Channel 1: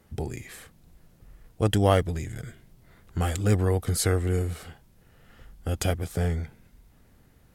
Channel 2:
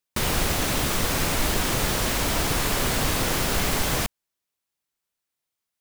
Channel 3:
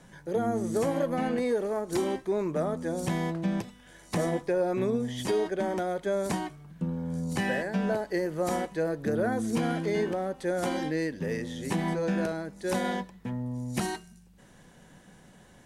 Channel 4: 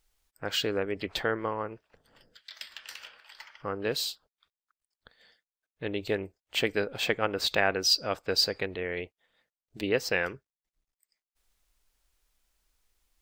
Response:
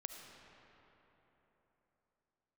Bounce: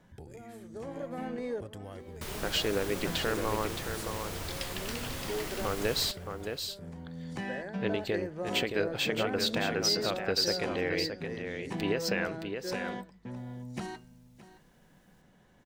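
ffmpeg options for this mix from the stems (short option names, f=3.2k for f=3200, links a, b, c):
-filter_complex "[0:a]acompressor=threshold=-27dB:ratio=6,volume=-15dB,asplit=3[a][b][c];[b]volume=-6dB[d];[1:a]adelay=2050,volume=-15.5dB,asplit=2[e][f];[f]volume=-19dB[g];[2:a]adynamicsmooth=sensitivity=4.5:basefreq=5.6k,volume=-7.5dB,asplit=2[h][i];[i]volume=-16.5dB[j];[3:a]alimiter=limit=-20.5dB:level=0:latency=1:release=139,adelay=2000,volume=1.5dB,asplit=2[k][l];[l]volume=-6.5dB[m];[c]apad=whole_len=690248[n];[h][n]sidechaincompress=threshold=-57dB:ratio=8:attack=7.7:release=918[o];[d][g][j][m]amix=inputs=4:normalize=0,aecho=0:1:620:1[p];[a][e][o][k][p]amix=inputs=5:normalize=0"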